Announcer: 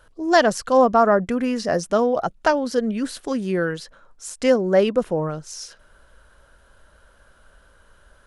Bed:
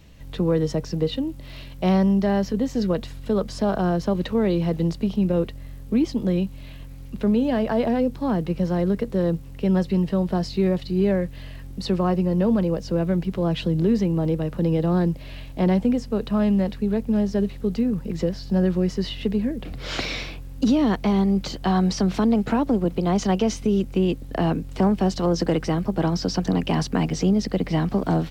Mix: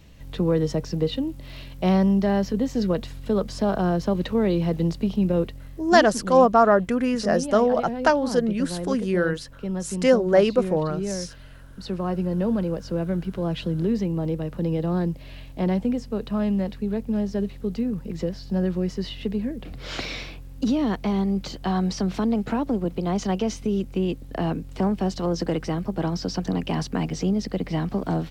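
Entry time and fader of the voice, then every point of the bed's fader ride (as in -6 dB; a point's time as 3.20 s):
5.60 s, -0.5 dB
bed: 5.40 s -0.5 dB
6.25 s -8.5 dB
11.74 s -8.5 dB
12.24 s -3.5 dB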